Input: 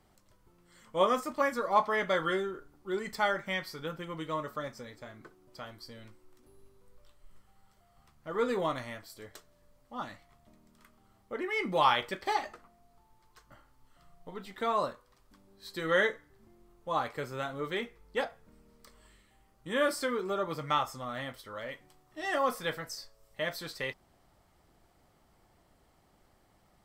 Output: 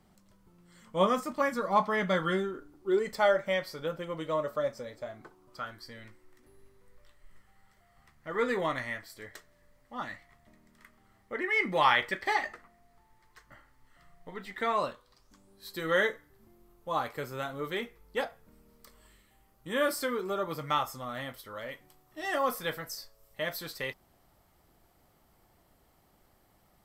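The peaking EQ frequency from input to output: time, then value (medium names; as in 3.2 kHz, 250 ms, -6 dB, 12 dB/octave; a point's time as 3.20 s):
peaking EQ +11 dB 0.42 oct
2.31 s 190 Hz
3.19 s 570 Hz
5.00 s 570 Hz
5.88 s 1.9 kHz
14.69 s 1.9 kHz
15.69 s 13 kHz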